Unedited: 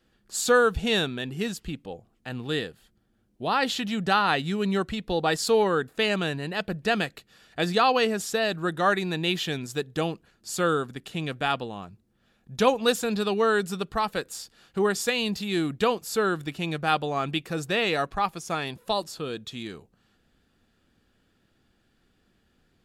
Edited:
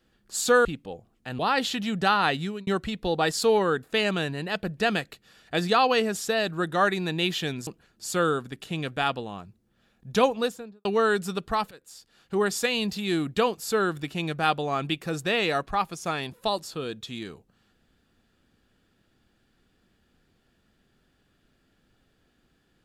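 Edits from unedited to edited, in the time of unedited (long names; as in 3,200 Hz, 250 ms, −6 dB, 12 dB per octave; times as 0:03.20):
0:00.65–0:01.65: remove
0:02.39–0:03.44: remove
0:04.44–0:04.72: fade out
0:09.72–0:10.11: remove
0:12.63–0:13.29: fade out and dull
0:14.15–0:14.92: fade in, from −23.5 dB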